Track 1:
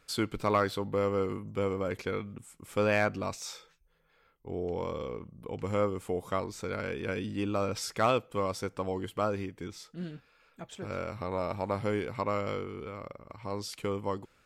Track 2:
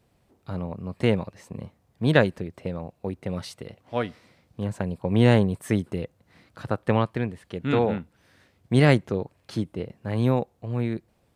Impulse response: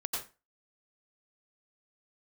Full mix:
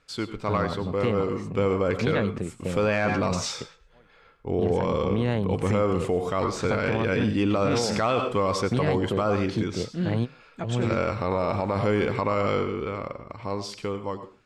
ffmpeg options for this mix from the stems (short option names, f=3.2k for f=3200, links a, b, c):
-filter_complex "[0:a]dynaudnorm=f=330:g=9:m=11dB,volume=-2dB,asplit=3[a][b][c];[b]volume=-10.5dB[d];[1:a]acompressor=threshold=-21dB:ratio=6,volume=1.5dB[e];[c]apad=whole_len=500652[f];[e][f]sidechaingate=range=-33dB:threshold=-42dB:ratio=16:detection=peak[g];[2:a]atrim=start_sample=2205[h];[d][h]afir=irnorm=-1:irlink=0[i];[a][g][i]amix=inputs=3:normalize=0,lowpass=6.7k,alimiter=limit=-15dB:level=0:latency=1:release=22"